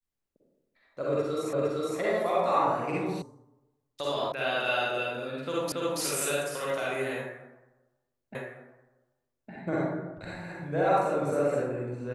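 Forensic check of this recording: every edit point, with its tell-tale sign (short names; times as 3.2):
1.53 repeat of the last 0.46 s
3.22 sound cut off
4.32 sound cut off
5.72 repeat of the last 0.28 s
8.35 repeat of the last 1.16 s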